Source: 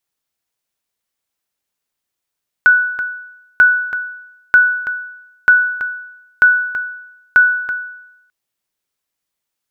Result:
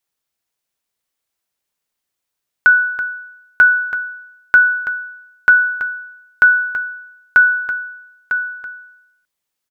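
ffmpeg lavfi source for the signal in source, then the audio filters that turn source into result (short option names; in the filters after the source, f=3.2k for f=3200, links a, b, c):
-f lavfi -i "aevalsrc='0.75*(sin(2*PI*1480*mod(t,0.94))*exp(-6.91*mod(t,0.94)/0.87)+0.299*sin(2*PI*1480*max(mod(t,0.94)-0.33,0))*exp(-6.91*max(mod(t,0.94)-0.33,0)/0.87))':d=5.64:s=44100"
-af "bandreject=f=60:t=h:w=6,bandreject=f=120:t=h:w=6,bandreject=f=180:t=h:w=6,bandreject=f=240:t=h:w=6,bandreject=f=300:t=h:w=6,bandreject=f=360:t=h:w=6,aecho=1:1:951:0.355"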